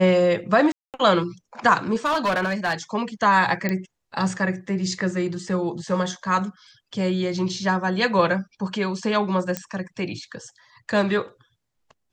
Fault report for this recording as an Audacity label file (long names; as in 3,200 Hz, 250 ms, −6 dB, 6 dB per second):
0.720000	0.940000	drop-out 218 ms
1.950000	2.730000	clipping −18 dBFS
3.690000	3.690000	click −11 dBFS
9.570000	9.570000	click −10 dBFS